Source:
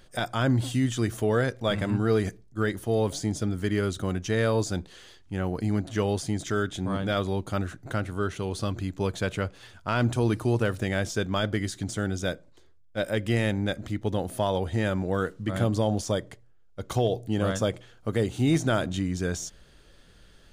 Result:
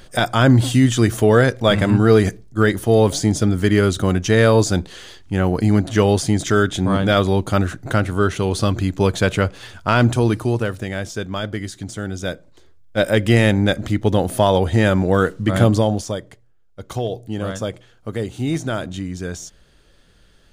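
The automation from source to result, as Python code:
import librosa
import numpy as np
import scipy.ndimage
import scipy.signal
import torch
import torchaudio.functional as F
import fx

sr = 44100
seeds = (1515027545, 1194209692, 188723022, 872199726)

y = fx.gain(x, sr, db=fx.line((9.88, 11.0), (10.87, 1.5), (12.03, 1.5), (12.99, 11.0), (15.69, 11.0), (16.17, 1.0)))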